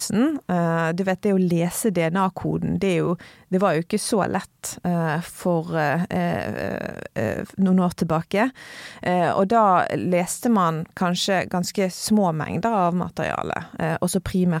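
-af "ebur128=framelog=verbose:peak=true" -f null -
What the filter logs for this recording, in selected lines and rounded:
Integrated loudness:
  I:         -22.6 LUFS
  Threshold: -32.6 LUFS
Loudness range:
  LRA:         3.2 LU
  Threshold: -42.6 LUFS
  LRA low:   -24.2 LUFS
  LRA high:  -21.0 LUFS
True peak:
  Peak:       -7.0 dBFS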